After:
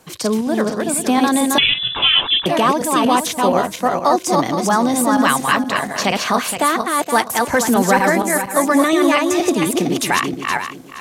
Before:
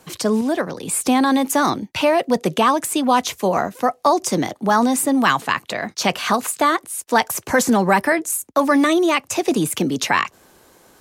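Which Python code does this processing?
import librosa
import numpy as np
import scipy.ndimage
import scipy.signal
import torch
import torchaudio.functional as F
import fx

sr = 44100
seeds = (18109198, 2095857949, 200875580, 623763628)

y = fx.reverse_delay_fb(x, sr, ms=235, feedback_pct=47, wet_db=-2.5)
y = fx.freq_invert(y, sr, carrier_hz=3700, at=(1.58, 2.46))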